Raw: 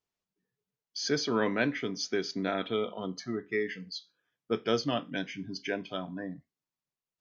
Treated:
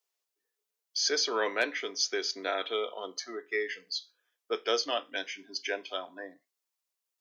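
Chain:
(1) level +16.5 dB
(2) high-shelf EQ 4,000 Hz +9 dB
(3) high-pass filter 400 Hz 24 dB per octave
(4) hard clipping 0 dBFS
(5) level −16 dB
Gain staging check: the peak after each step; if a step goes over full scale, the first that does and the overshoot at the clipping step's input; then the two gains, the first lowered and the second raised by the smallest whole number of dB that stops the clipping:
+2.0, +4.0, +3.5, 0.0, −16.0 dBFS
step 1, 3.5 dB
step 1 +12.5 dB, step 5 −12 dB

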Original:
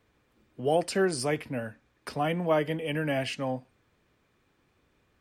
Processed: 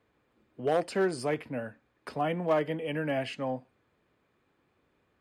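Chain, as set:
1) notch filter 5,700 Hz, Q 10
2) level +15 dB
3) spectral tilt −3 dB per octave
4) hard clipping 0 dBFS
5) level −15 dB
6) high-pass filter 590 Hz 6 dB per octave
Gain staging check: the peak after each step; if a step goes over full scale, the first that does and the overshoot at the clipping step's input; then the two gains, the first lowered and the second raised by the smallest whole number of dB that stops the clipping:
−12.0, +3.0, +5.5, 0.0, −15.0, −15.5 dBFS
step 2, 5.5 dB
step 2 +9 dB, step 5 −9 dB

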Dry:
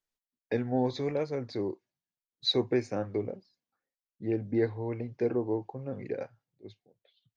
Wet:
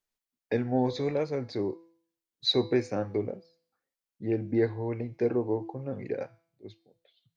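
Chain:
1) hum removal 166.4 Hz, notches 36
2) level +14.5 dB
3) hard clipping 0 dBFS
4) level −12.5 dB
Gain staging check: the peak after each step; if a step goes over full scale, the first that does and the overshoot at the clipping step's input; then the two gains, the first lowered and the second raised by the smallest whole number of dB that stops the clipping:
−16.0, −1.5, −1.5, −14.0 dBFS
no step passes full scale

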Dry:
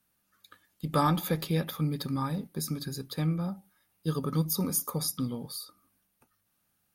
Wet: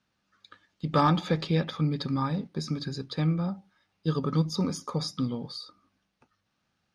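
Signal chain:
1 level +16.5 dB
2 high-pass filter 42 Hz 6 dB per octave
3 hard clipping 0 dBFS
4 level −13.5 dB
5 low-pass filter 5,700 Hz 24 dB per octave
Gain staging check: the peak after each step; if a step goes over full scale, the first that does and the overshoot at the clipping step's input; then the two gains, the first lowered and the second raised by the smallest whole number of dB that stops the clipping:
+3.0, +3.0, 0.0, −13.5, −13.0 dBFS
step 1, 3.0 dB
step 1 +13.5 dB, step 4 −10.5 dB

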